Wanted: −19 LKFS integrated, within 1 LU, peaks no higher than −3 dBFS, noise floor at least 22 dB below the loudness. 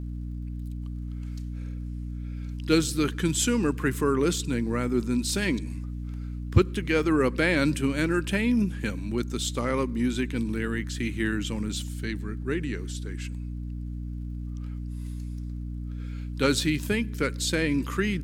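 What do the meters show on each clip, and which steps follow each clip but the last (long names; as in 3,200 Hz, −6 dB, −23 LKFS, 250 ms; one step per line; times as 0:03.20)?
crackle rate 29 per second; mains hum 60 Hz; hum harmonics up to 300 Hz; level of the hum −31 dBFS; integrated loudness −28.0 LKFS; sample peak −4.5 dBFS; target loudness −19.0 LKFS
→ click removal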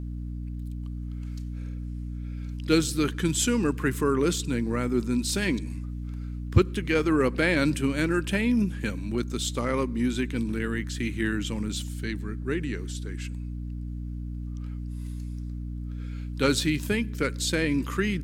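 crackle rate 0.22 per second; mains hum 60 Hz; hum harmonics up to 300 Hz; level of the hum −31 dBFS
→ hum removal 60 Hz, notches 5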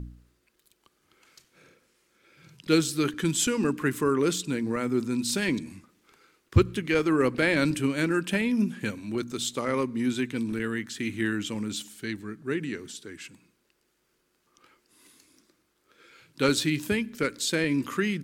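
mains hum none found; integrated loudness −27.5 LKFS; sample peak −6.5 dBFS; target loudness −19.0 LKFS
→ level +8.5 dB
brickwall limiter −3 dBFS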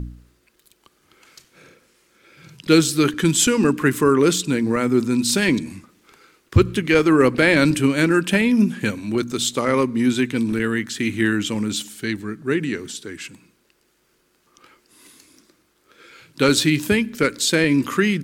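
integrated loudness −19.0 LKFS; sample peak −3.0 dBFS; background noise floor −64 dBFS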